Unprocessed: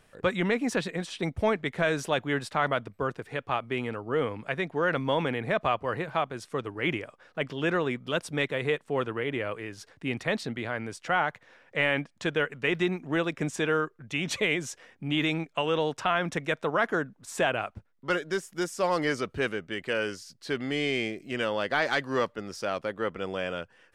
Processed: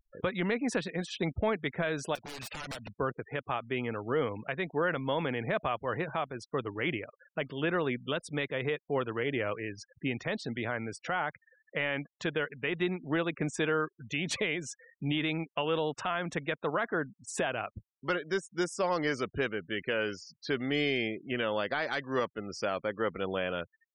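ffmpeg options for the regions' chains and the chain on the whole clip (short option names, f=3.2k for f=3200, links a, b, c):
-filter_complex "[0:a]asettb=1/sr,asplit=3[a][b][c];[a]atrim=end=2.154[d];[b]atrim=start=2.15:end=2.93,asetpts=PTS-STARTPTS,afade=t=in:d=0.004:c=qsin,afade=t=out:st=0.776:d=0.004:c=qsin,equalizer=f=2.6k:t=o:w=0.33:g=14,acompressor=threshold=-31dB:ratio=8:attack=3.2:release=140:knee=1:detection=peak,aeval=exprs='(mod(42.2*val(0)+1,2)-1)/42.2':c=same[e];[c]atrim=start=2.926[f];[d][e]acrossfade=d=0.004:c1=hsin:c2=qsin[g];[g][f]acrossfade=d=0.004:c1=qsin:c2=hsin,afftfilt=real='re*gte(hypot(re,im),0.00794)':imag='im*gte(hypot(re,im),0.00794)':win_size=1024:overlap=0.75,alimiter=limit=-20dB:level=0:latency=1:release=463,volume=1dB"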